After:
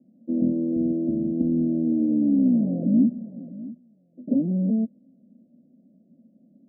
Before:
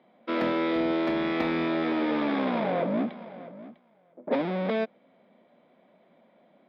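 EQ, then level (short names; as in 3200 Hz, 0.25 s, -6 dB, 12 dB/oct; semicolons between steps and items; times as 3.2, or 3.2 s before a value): steep low-pass 580 Hz 48 dB/oct; resonant low shelf 330 Hz +8.5 dB, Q 3; -3.0 dB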